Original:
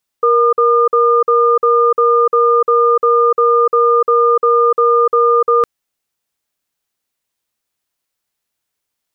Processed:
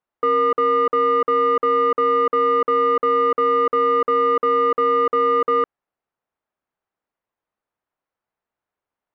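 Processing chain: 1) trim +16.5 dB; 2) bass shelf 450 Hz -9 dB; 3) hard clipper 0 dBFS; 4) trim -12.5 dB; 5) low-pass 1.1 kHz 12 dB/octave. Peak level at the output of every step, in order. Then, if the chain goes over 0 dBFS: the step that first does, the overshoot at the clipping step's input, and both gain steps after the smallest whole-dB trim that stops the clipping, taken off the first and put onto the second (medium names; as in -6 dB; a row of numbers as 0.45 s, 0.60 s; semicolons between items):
+11.5 dBFS, +9.0 dBFS, 0.0 dBFS, -12.5 dBFS, -12.5 dBFS; step 1, 9.0 dB; step 1 +7.5 dB, step 4 -3.5 dB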